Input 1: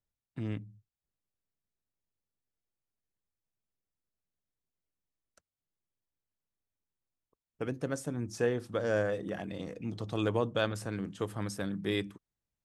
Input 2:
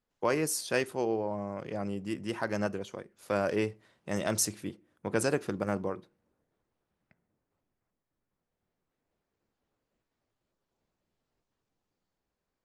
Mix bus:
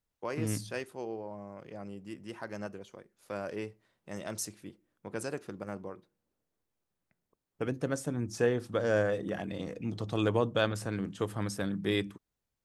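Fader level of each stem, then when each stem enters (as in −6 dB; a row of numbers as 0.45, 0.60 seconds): +2.0, −8.5 decibels; 0.00, 0.00 seconds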